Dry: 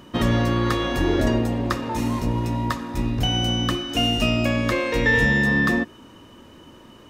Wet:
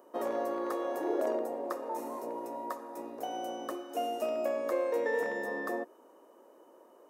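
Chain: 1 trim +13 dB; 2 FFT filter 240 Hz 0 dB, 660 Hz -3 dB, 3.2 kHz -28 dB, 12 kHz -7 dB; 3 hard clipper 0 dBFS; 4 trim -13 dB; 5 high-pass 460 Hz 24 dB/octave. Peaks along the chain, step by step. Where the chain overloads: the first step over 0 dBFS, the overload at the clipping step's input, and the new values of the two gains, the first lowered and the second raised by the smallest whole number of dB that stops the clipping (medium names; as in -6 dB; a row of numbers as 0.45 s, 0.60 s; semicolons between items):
+6.0 dBFS, +4.5 dBFS, 0.0 dBFS, -13.0 dBFS, -19.0 dBFS; step 1, 4.5 dB; step 1 +8 dB, step 4 -8 dB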